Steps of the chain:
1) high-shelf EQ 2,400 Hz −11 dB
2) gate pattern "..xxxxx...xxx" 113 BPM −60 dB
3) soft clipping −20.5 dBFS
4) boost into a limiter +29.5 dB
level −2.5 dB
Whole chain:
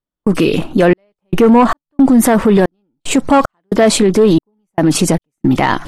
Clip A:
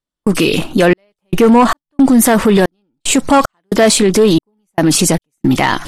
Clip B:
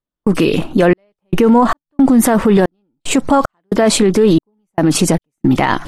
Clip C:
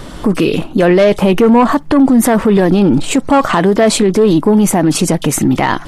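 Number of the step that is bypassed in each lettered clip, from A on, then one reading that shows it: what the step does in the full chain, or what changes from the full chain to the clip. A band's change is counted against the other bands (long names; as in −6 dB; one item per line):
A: 1, 8 kHz band +5.0 dB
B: 3, distortion level −16 dB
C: 2, change in crest factor −2.0 dB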